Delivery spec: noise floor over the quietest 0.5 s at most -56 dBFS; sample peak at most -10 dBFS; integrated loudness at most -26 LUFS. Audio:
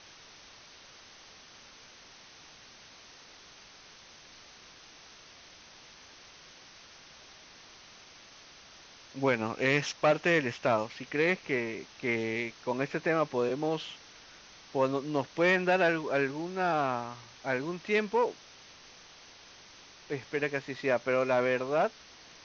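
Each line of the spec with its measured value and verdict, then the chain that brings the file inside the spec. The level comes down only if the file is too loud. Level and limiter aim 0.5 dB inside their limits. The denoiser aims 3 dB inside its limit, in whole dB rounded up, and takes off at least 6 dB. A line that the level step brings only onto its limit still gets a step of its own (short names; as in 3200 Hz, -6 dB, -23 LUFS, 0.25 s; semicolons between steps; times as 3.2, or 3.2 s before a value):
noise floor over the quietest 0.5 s -54 dBFS: fail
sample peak -12.5 dBFS: OK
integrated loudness -30.0 LUFS: OK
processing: denoiser 6 dB, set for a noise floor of -54 dBFS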